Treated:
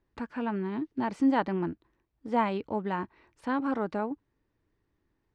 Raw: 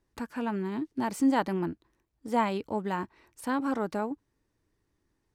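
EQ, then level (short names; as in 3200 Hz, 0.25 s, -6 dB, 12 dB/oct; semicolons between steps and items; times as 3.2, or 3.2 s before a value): LPF 3400 Hz 12 dB/oct; 0.0 dB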